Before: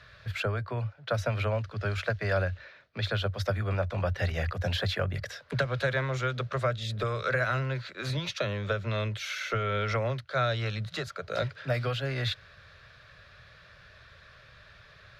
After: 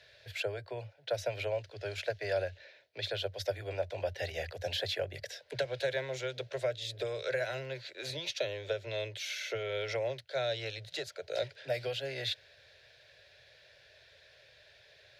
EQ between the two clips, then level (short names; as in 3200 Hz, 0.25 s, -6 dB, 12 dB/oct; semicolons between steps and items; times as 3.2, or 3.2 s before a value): HPF 360 Hz 6 dB/oct; fixed phaser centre 500 Hz, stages 4; 0.0 dB